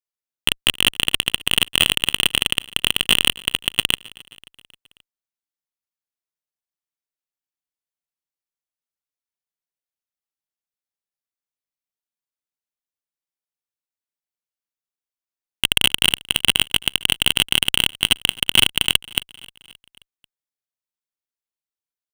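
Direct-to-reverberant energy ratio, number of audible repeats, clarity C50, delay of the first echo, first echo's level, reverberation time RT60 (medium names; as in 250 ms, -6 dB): no reverb, 3, no reverb, 266 ms, -22.5 dB, no reverb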